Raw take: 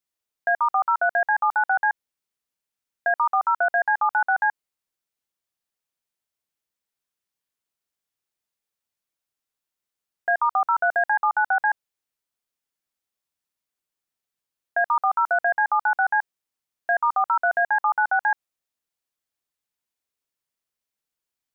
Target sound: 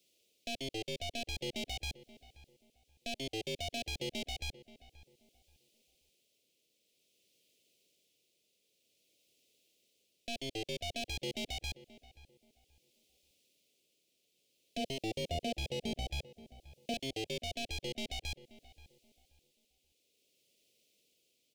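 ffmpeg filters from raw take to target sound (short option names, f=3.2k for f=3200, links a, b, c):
-filter_complex "[0:a]asettb=1/sr,asplit=3[a][b][c];[a]atrim=end=14.774[d];[b]atrim=start=14.77:end=16.94,asetpts=PTS-STARTPTS,afade=t=in:d=0.004:c=qsin,afade=t=out:st=2.166:d=0.004:c=qsin,equalizer=f=1.3k:t=o:w=1.1:g=-11.5[e];[c]atrim=start=16.936[f];[d][e]acrossfade=d=0.004:c1=hsin:c2=qsin[g];[g][f]acrossfade=d=0.004:c1=qsin:c2=hsin,acrossover=split=150[h][i];[i]acompressor=threshold=-27dB:ratio=2.5[j];[h][j]amix=inputs=2:normalize=0,alimiter=level_in=1dB:limit=-24dB:level=0:latency=1:release=91,volume=-1dB,aeval=exprs='(tanh(35.5*val(0)+0.75)-tanh(0.75))/35.5':c=same,tremolo=f=0.53:d=0.4,asplit=2[k][l];[l]highpass=f=720:p=1,volume=28dB,asoftclip=type=tanh:threshold=-27.5dB[m];[k][m]amix=inputs=2:normalize=0,lowpass=f=1.4k:p=1,volume=-6dB,asuperstop=centerf=1200:order=8:qfactor=0.58,asplit=2[n][o];[o]adelay=530,lowpass=f=1.9k:p=1,volume=-16.5dB,asplit=2[p][q];[q]adelay=530,lowpass=f=1.9k:p=1,volume=0.27,asplit=2[r][s];[s]adelay=530,lowpass=f=1.9k:p=1,volume=0.27[t];[n][p][r][t]amix=inputs=4:normalize=0,volume=10dB"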